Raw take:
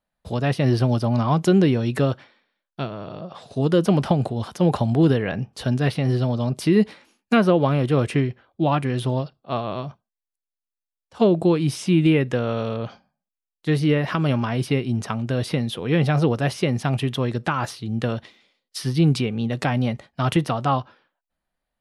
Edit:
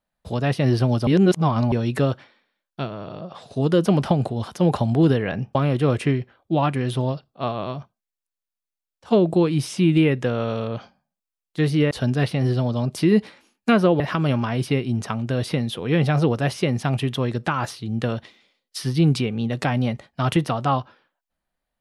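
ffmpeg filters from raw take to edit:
-filter_complex "[0:a]asplit=6[a][b][c][d][e][f];[a]atrim=end=1.072[g];[b]atrim=start=1.068:end=1.722,asetpts=PTS-STARTPTS,areverse[h];[c]atrim=start=1.718:end=5.552[i];[d]atrim=start=7.638:end=14.002[j];[e]atrim=start=5.548:end=7.642[k];[f]atrim=start=13.998[l];[g][h]acrossfade=d=0.004:c1=hsin:c2=hsin[m];[m][i]acrossfade=d=0.004:c1=hsin:c2=hsin[n];[n][j]acrossfade=d=0.004:c1=hsin:c2=hsin[o];[o][k]acrossfade=d=0.004:c1=hsin:c2=hsin[p];[p][l]acrossfade=d=0.004:c1=hsin:c2=hsin"

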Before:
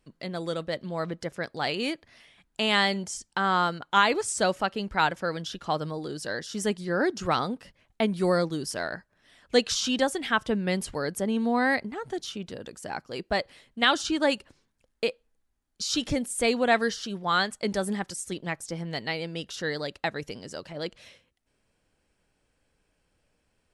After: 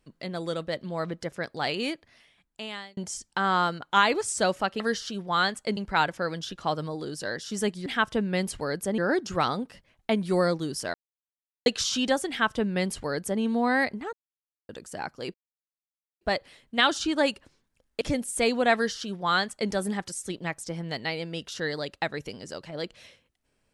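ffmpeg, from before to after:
-filter_complex "[0:a]asplit=12[a][b][c][d][e][f][g][h][i][j][k][l];[a]atrim=end=2.97,asetpts=PTS-STARTPTS,afade=t=out:st=1.78:d=1.19[m];[b]atrim=start=2.97:end=4.802,asetpts=PTS-STARTPTS,afade=t=in:d=0.004:c=hsin[n];[c]atrim=start=16.758:end=17.732[o];[d]atrim=start=4.798:end=6.892[p];[e]atrim=start=10.198:end=11.322[q];[f]atrim=start=6.888:end=8.85,asetpts=PTS-STARTPTS,afade=t=out:st=1.958:d=0.004:c=hsin[r];[g]atrim=start=8.85:end=9.57,asetpts=PTS-STARTPTS,volume=0[s];[h]atrim=start=9.57:end=12.04,asetpts=PTS-STARTPTS,afade=t=in:d=0.004:c=hsin,afade=t=out:st=2.466:d=0.004:c=hsin[t];[i]atrim=start=12.04:end=12.6,asetpts=PTS-STARTPTS,volume=0[u];[j]atrim=start=12.6:end=13.25,asetpts=PTS-STARTPTS,afade=t=in:d=0.004:c=hsin,afade=t=out:st=0.646:d=0.004:c=hsin,apad=pad_dur=0.87[v];[k]atrim=start=13.25:end=15.052,asetpts=PTS-STARTPTS,afade=t=in:d=0.004:c=hsin[w];[l]atrim=start=16.028[x];[m][n]concat=n=2:v=0:a=1[y];[y][o]acrossfade=d=0.004:c1=hsin:c2=hsin[z];[z][p]acrossfade=d=0.004:c1=hsin:c2=hsin[aa];[aa][q]acrossfade=d=0.004:c1=hsin:c2=hsin[ab];[r][s][t][u][v][w]concat=n=6:v=0:a=1[ac];[ab][ac]acrossfade=d=0.004:c1=hsin:c2=hsin[ad];[ad][x]acrossfade=d=0.004:c1=hsin:c2=hsin"

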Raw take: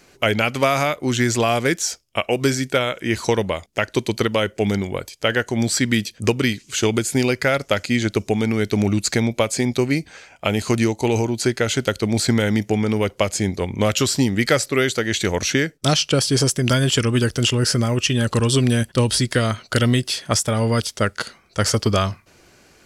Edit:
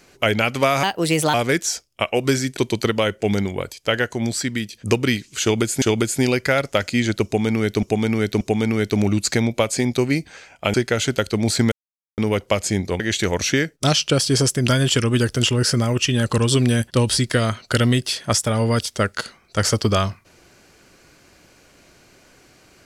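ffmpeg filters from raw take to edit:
-filter_complex "[0:a]asplit=12[a][b][c][d][e][f][g][h][i][j][k][l];[a]atrim=end=0.834[m];[b]atrim=start=0.83:end=1.5,asetpts=PTS-STARTPTS,asetrate=58212,aresample=44100,atrim=end_sample=22384,asetpts=PTS-STARTPTS[n];[c]atrim=start=1.496:end=2.732[o];[d]atrim=start=3.928:end=6.09,asetpts=PTS-STARTPTS,afade=t=out:st=1.282:d=0.88:silence=0.398107[p];[e]atrim=start=6.09:end=7.182,asetpts=PTS-STARTPTS,afade=t=in:d=0.004:c=hsin:silence=0.398107[q];[f]atrim=start=6.778:end=8.792[r];[g]atrim=start=8.208:end=8.792[s];[h]atrim=start=8.208:end=10.542[t];[i]atrim=start=11.428:end=12.41,asetpts=PTS-STARTPTS,afade=t=out:st=0.978:d=0.004:c=hsin[u];[j]atrim=start=12.41:end=12.87,asetpts=PTS-STARTPTS,volume=0[v];[k]atrim=start=12.87:end=13.692,asetpts=PTS-STARTPTS,afade=t=in:d=0.004:c=hsin[w];[l]atrim=start=15.008[x];[m][n]acrossfade=d=0.004:c1=hsin:c2=hsin[y];[y][o]acrossfade=d=0.004:c1=hsin:c2=hsin[z];[p][q]concat=n=2:v=0:a=1[aa];[z][aa]acrossfade=d=0.004:c1=hsin:c2=hsin[ab];[ab][r]acrossfade=d=0.004:c1=hsin:c2=hsin[ac];[ac][s]acrossfade=d=0.004:c1=hsin:c2=hsin[ad];[ad][t]acrossfade=d=0.004:c1=hsin:c2=hsin[ae];[u][v][w]concat=n=3:v=0:a=1[af];[ae][af]acrossfade=d=0.004:c1=hsin:c2=hsin[ag];[ag][x]acrossfade=d=0.004:c1=hsin:c2=hsin"

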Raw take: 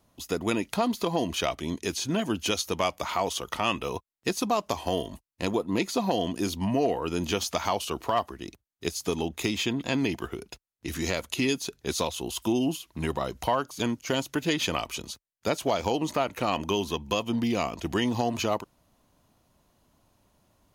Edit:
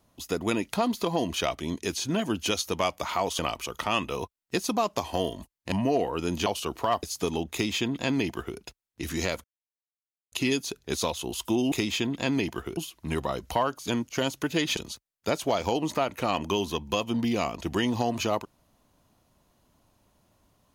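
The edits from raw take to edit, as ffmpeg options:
-filter_complex "[0:a]asplit=10[a][b][c][d][e][f][g][h][i][j];[a]atrim=end=3.392[k];[b]atrim=start=14.688:end=14.962[l];[c]atrim=start=3.388:end=5.452[m];[d]atrim=start=6.608:end=7.352[n];[e]atrim=start=7.708:end=8.282[o];[f]atrim=start=8.878:end=11.29,asetpts=PTS-STARTPTS,afade=t=out:st=2.408:d=0.004:c=hsin,apad=pad_dur=0.88[p];[g]atrim=start=11.29:end=12.692,asetpts=PTS-STARTPTS,afade=t=in:d=0.004:c=hsin[q];[h]atrim=start=9.378:end=10.432[r];[i]atrim=start=12.688:end=14.692[s];[j]atrim=start=14.958[t];[k][l]acrossfade=d=0.004:c1=hsin:c2=hsin[u];[u][m]acrossfade=d=0.004:c1=hsin:c2=hsin[v];[v][n]acrossfade=d=0.004:c1=hsin:c2=hsin[w];[w][o]acrossfade=d=0.004:c1=hsin:c2=hsin[x];[p][q]concat=n=2:v=0:a=1[y];[x][y]acrossfade=d=0.004:c1=hsin:c2=hsin[z];[z][r]acrossfade=d=0.004:c1=hsin:c2=hsin[aa];[aa][s]acrossfade=d=0.004:c1=hsin:c2=hsin[ab];[ab][t]acrossfade=d=0.004:c1=hsin:c2=hsin"

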